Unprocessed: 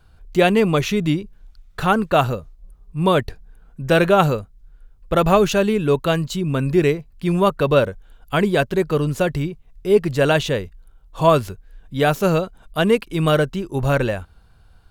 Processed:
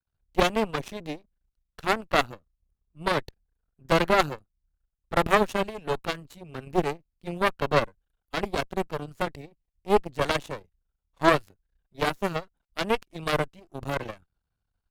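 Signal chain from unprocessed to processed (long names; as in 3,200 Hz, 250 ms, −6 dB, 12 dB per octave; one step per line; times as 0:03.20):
half-wave rectification
harmonic generator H 2 −7 dB, 3 −19 dB, 5 −28 dB, 7 −19 dB, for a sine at −2.5 dBFS
level −4.5 dB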